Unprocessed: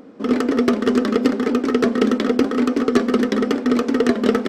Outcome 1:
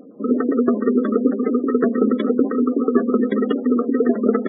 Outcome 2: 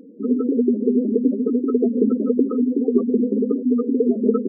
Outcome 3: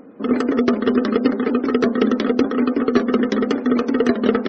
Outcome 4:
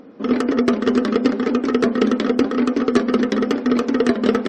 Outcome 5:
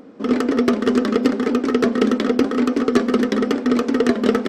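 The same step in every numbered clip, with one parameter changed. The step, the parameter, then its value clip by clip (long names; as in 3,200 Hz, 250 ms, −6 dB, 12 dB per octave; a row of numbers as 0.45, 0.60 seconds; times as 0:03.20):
gate on every frequency bin, under each frame's peak: −20, −10, −35, −45, −60 decibels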